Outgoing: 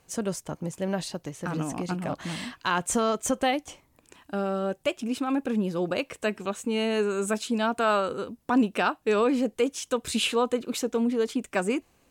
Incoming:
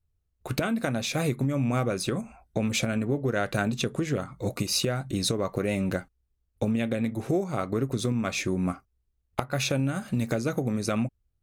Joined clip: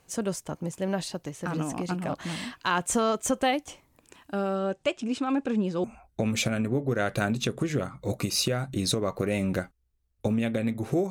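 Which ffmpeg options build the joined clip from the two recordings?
-filter_complex "[0:a]asettb=1/sr,asplit=3[a][b][c];[a]atrim=end=4.554[d];[b]atrim=start=4.55:end=5.84,asetpts=PTS-STARTPTS,afade=t=in:d=0.004:c=qsin,afade=t=out:st=1.286:d=0.004:c=qsin,lowpass=f=8.2k:w=0.5412,lowpass=f=8.2k:w=1.3066[e];[c]atrim=start=5.836[f];[d][e]acrossfade=d=0.004:c1=hsin:c2=qsin[g];[g][f]acrossfade=d=0.004:c1=qsin:c2=hsin,apad=whole_dur=11.1,atrim=end=11.1,atrim=end=5.842[h];[1:a]atrim=start=2.208:end=7.47[i];[h][i]acrossfade=d=0.004:c1=hsin:c2=hsin"

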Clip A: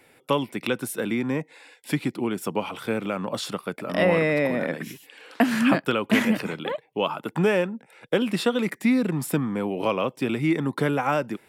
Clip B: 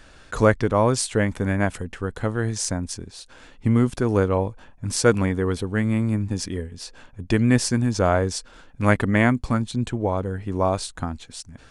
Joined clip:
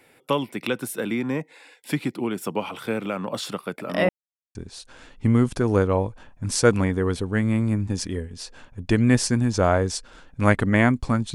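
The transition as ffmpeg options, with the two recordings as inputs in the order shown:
-filter_complex "[0:a]apad=whole_dur=11.34,atrim=end=11.34,asplit=2[a][b];[a]atrim=end=4.09,asetpts=PTS-STARTPTS,afade=t=out:st=4.086:d=0.004:c=hsin[c];[b]atrim=start=4.09:end=4.55,asetpts=PTS-STARTPTS,volume=0[d];[1:a]atrim=start=2.96:end=9.75,asetpts=PTS-STARTPTS,afade=t=in:d=0.004:c=hsin[e];[c][d][e]concat=n=3:v=0:a=1"

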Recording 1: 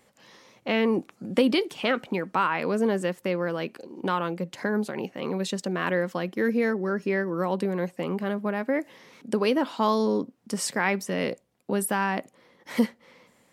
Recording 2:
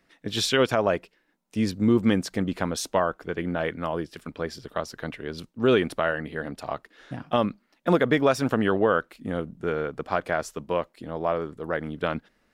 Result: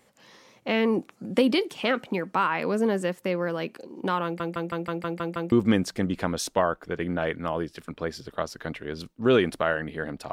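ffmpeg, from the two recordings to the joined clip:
-filter_complex "[0:a]apad=whole_dur=10.32,atrim=end=10.32,asplit=8[a][b][c][d][e][f][g][h];[a]atrim=end=4.402[i];[b]atrim=start=4.238:end=4.402[j];[c]atrim=start=4.238:end=4.402[k];[d]atrim=start=4.238:end=4.402[l];[e]atrim=start=4.238:end=4.402[m];[f]atrim=start=4.238:end=4.402[n];[g]atrim=start=4.238:end=4.402[o];[h]atrim=start=4.238:end=4.402[p];[1:a]atrim=start=1.898:end=6.7[q];[i][j]acrossfade=d=0.004:c1=hsin:c2=hsin[r];[r][k]acrossfade=d=0.004:c1=hsin:c2=hsin[s];[s][l]acrossfade=d=0.004:c1=hsin:c2=hsin[t];[t][m]acrossfade=d=0.004:c1=hsin:c2=hsin[u];[u][n]acrossfade=d=0.004:c1=hsin:c2=hsin[v];[v][o]acrossfade=d=0.004:c1=hsin:c2=hsin[w];[w][p]acrossfade=d=0.004:c1=hsin:c2=hsin[x];[x][q]acrossfade=d=0.004:c1=hsin:c2=hsin"

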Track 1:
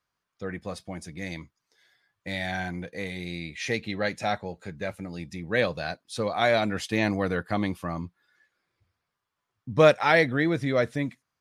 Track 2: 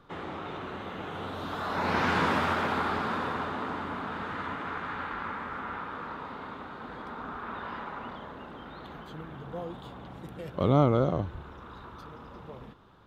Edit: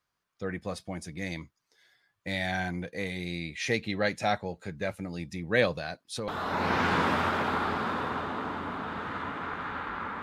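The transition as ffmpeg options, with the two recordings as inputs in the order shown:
-filter_complex "[0:a]asettb=1/sr,asplit=3[a][b][c];[a]atrim=end=5.744[d];[b]atrim=start=5.74:end=6.28,asetpts=PTS-STARTPTS,afade=t=in:d=0.004:c=qsin,afade=t=out:st=0.536:d=0.004:c=qsin,acompressor=threshold=-30dB:ratio=5:attack=3.2:release=140:knee=1:detection=peak[e];[c]atrim=start=6.276[f];[d][e]acrossfade=d=0.004:c1=hsin:c2=qsin[g];[g][f]acrossfade=d=0.004:c1=qsin:c2=hsin,apad=whole_dur=10.22,atrim=end=10.22,atrim=end=6.282[h];[1:a]atrim=start=1.518:end=5.46[i];[h][i]acrossfade=d=0.004:c1=hsin:c2=hsin"

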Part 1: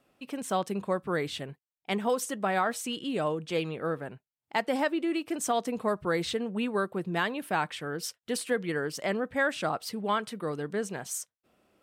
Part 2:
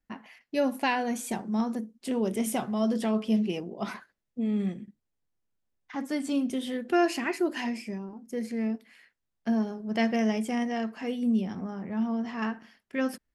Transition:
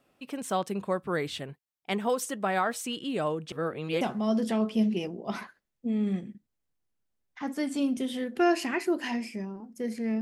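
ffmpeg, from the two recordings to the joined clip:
-filter_complex "[0:a]apad=whole_dur=10.21,atrim=end=10.21,asplit=2[a][b];[a]atrim=end=3.522[c];[b]atrim=start=3.518:end=4.012,asetpts=PTS-STARTPTS,areverse[d];[1:a]atrim=start=2.538:end=8.74[e];[c][d]acrossfade=d=0.004:c1=hsin:c2=hsin[f];[f][e]acrossfade=d=0.004:c1=hsin:c2=hsin"

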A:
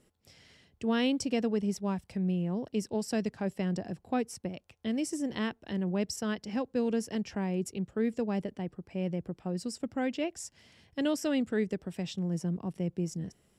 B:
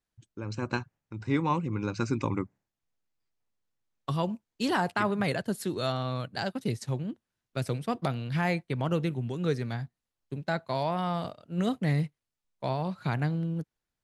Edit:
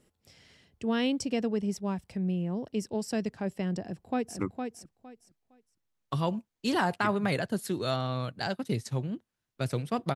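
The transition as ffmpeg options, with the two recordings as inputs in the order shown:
-filter_complex "[0:a]apad=whole_dur=10.15,atrim=end=10.15,atrim=end=4.392[a];[1:a]atrim=start=2.348:end=8.11[b];[a][b]acrossfade=d=0.004:c1=hsin:c2=hsin,asplit=2[c][d];[d]afade=t=in:st=3.82:d=0.01,afade=t=out:st=4.39:d=0.01,aecho=0:1:460|920|1380:0.530884|0.106177|0.0212354[e];[c][e]amix=inputs=2:normalize=0"

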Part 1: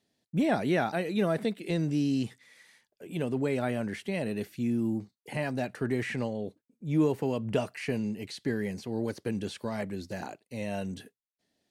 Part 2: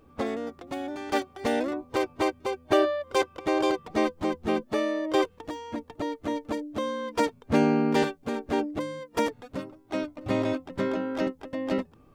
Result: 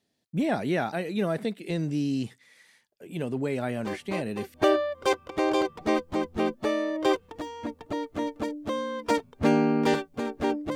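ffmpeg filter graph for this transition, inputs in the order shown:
-filter_complex "[1:a]asplit=2[a][b];[0:a]apad=whole_dur=10.75,atrim=end=10.75,atrim=end=4.542[c];[b]atrim=start=2.628:end=8.84[d];[a]atrim=start=1.85:end=2.63,asetpts=PTS-STARTPTS,volume=-8.5dB,afade=t=in:d=0.004:c=hsin,afade=t=out:st=0.776:d=0.004:c=hsin,adelay=3760[e];[c][d]acrossfade=d=0.004:c1=hsin:c2=hsin[f];[f][e]amix=inputs=2:normalize=0"

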